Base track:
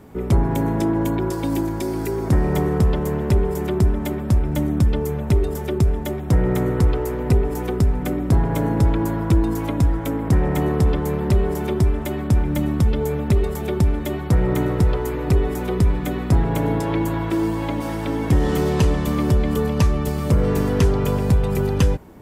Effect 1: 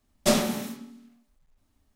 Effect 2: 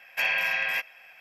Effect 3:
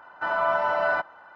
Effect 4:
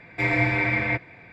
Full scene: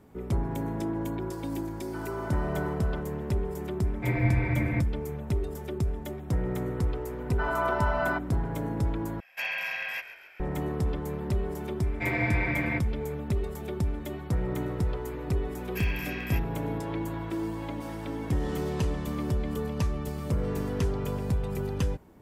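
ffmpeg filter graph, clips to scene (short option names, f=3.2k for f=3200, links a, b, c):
-filter_complex "[3:a]asplit=2[a][b];[4:a]asplit=2[c][d];[2:a]asplit=2[e][f];[0:a]volume=-11dB[g];[a]aecho=1:1:283:0.668[h];[c]aemphasis=mode=reproduction:type=riaa[i];[e]asplit=7[j][k][l][m][n][o][p];[k]adelay=137,afreqshift=-48,volume=-14dB[q];[l]adelay=274,afreqshift=-96,volume=-18.7dB[r];[m]adelay=411,afreqshift=-144,volume=-23.5dB[s];[n]adelay=548,afreqshift=-192,volume=-28.2dB[t];[o]adelay=685,afreqshift=-240,volume=-32.9dB[u];[p]adelay=822,afreqshift=-288,volume=-37.7dB[v];[j][q][r][s][t][u][v]amix=inputs=7:normalize=0[w];[d]highshelf=f=5k:g=-9[x];[f]aemphasis=mode=production:type=bsi[y];[g]asplit=2[z][aa];[z]atrim=end=9.204[ab];[w]atrim=end=1.2,asetpts=PTS-STARTPTS,volume=-6.5dB[ac];[aa]atrim=start=10.396[ad];[h]atrim=end=1.35,asetpts=PTS-STARTPTS,volume=-16.5dB,afade=t=in:d=0.004:c=hsin,afade=t=out:st=1.346:d=0.004:c=hsin,adelay=1720[ae];[i]atrim=end=1.32,asetpts=PTS-STARTPTS,volume=-9.5dB,afade=t=in:d=0.004:c=hsin,afade=t=out:st=1.316:d=0.004:c=hsin,adelay=3840[af];[b]atrim=end=1.35,asetpts=PTS-STARTPTS,volume=-4.5dB,afade=t=in:d=0.004:c=hsin,afade=t=out:st=1.346:d=0.004:c=hsin,adelay=7170[ag];[x]atrim=end=1.32,asetpts=PTS-STARTPTS,volume=-5.5dB,afade=t=in:d=0.004:c=hsin,afade=t=out:st=1.316:d=0.004:c=hsin,adelay=11820[ah];[y]atrim=end=1.2,asetpts=PTS-STARTPTS,volume=-13.5dB,afade=t=in:d=0.004:c=hsin,afade=t=out:st=1.196:d=0.004:c=hsin,adelay=15580[ai];[ab][ac]acrossfade=d=0.004:c1=hsin:c2=hsin[aj];[aj][ad]acrossfade=d=0.004:c1=hsin:c2=hsin[ak];[ak][ae][af][ag][ah][ai]amix=inputs=6:normalize=0"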